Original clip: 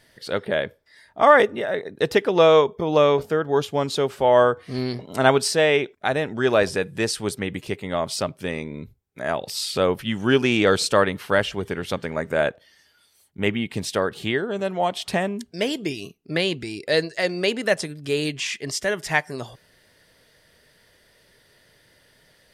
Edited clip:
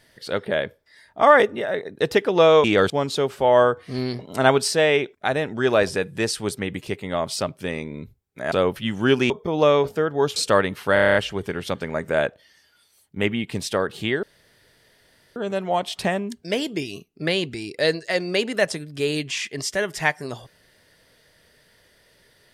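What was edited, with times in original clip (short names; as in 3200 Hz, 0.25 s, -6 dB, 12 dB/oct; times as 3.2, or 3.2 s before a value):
2.64–3.7 swap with 10.53–10.79
9.32–9.75 cut
11.37 stutter 0.03 s, 8 plays
14.45 insert room tone 1.13 s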